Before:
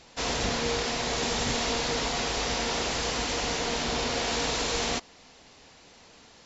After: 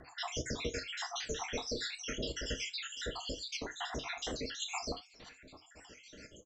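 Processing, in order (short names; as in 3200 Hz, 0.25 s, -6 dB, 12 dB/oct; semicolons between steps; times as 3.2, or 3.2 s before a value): random spectral dropouts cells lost 77%; 2.87–4.62 high shelf 6000 Hz -9 dB; compressor 2:1, threshold -47 dBFS, peak gain reduction 11 dB; rotary speaker horn 7.5 Hz; 1.11–1.92 doubler 30 ms -10.5 dB; outdoor echo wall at 150 m, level -27 dB; non-linear reverb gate 0.1 s falling, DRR 7.5 dB; record warp 78 rpm, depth 100 cents; gain +6 dB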